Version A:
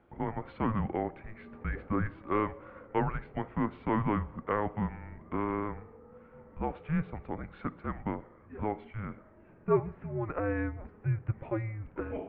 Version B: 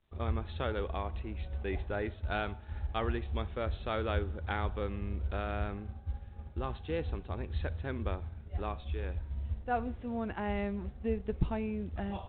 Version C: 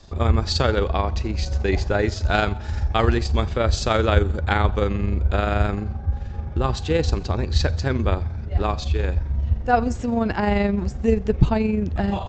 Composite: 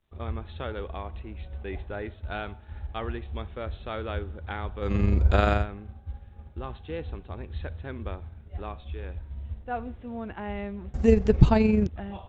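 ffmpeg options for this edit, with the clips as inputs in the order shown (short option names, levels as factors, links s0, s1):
-filter_complex "[2:a]asplit=2[s0][s1];[1:a]asplit=3[s2][s3][s4];[s2]atrim=end=4.97[s5];[s0]atrim=start=4.81:end=5.66[s6];[s3]atrim=start=5.5:end=10.942[s7];[s1]atrim=start=10.938:end=11.872[s8];[s4]atrim=start=11.868[s9];[s5][s6]acrossfade=d=0.16:c1=tri:c2=tri[s10];[s10][s7]acrossfade=d=0.16:c1=tri:c2=tri[s11];[s11][s8]acrossfade=d=0.004:c1=hsin:c2=hsin[s12];[s12][s9]acrossfade=d=0.004:c1=hsin:c2=hsin"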